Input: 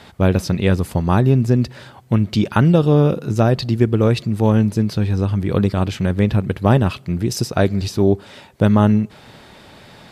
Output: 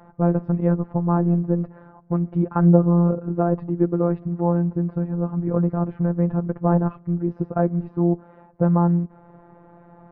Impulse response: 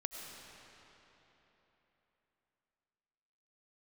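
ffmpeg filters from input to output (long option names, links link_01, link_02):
-af "lowpass=frequency=1200:width=0.5412,lowpass=frequency=1200:width=1.3066,afftfilt=real='hypot(re,im)*cos(PI*b)':imag='0':win_size=1024:overlap=0.75"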